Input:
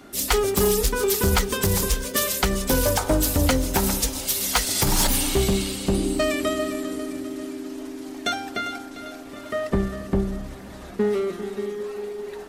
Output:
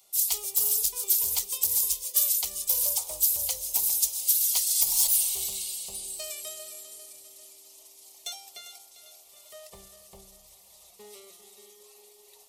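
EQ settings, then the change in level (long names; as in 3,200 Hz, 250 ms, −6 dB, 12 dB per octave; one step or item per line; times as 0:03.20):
first-order pre-emphasis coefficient 0.97
phaser with its sweep stopped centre 660 Hz, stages 4
notch filter 1,300 Hz, Q 21
0.0 dB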